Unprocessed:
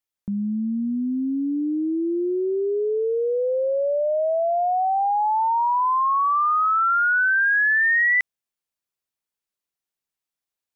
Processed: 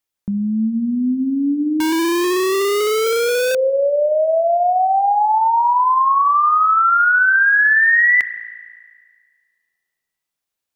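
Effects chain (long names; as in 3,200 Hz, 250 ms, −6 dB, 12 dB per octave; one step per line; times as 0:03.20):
spring reverb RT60 1.8 s, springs 32 ms, chirp 75 ms, DRR 12 dB
0:01.80–0:03.55: comparator with hysteresis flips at −27.5 dBFS
level +5.5 dB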